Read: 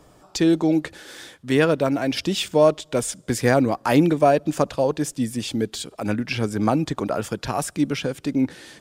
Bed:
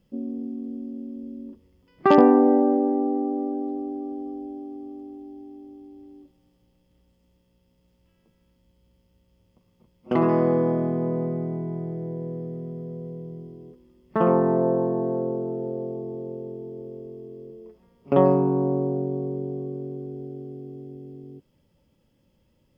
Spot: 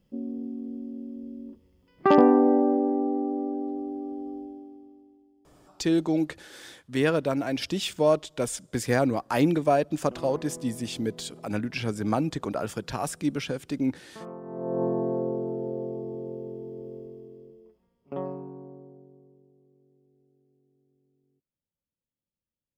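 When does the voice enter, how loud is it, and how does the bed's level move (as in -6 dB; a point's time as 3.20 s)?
5.45 s, -5.5 dB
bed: 4.37 s -2.5 dB
5.35 s -21.5 dB
14.42 s -21.5 dB
14.83 s -2 dB
16.96 s -2 dB
19.54 s -31 dB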